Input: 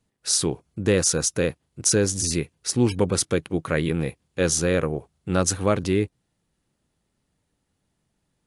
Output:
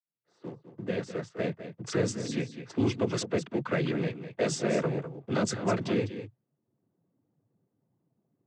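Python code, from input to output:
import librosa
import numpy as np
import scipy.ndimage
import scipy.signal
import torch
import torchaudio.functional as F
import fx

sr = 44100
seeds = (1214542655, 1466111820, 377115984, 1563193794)

p1 = fx.fade_in_head(x, sr, length_s=2.27)
p2 = scipy.signal.sosfilt(scipy.signal.butter(2, 6200.0, 'lowpass', fs=sr, output='sos'), p1)
p3 = fx.env_lowpass(p2, sr, base_hz=580.0, full_db=-17.5)
p4 = fx.leveller(p3, sr, passes=1)
p5 = fx.noise_vocoder(p4, sr, seeds[0], bands=16)
p6 = p5 + fx.echo_single(p5, sr, ms=202, db=-13.0, dry=0)
p7 = fx.band_squash(p6, sr, depth_pct=40)
y = p7 * 10.0 ** (-8.0 / 20.0)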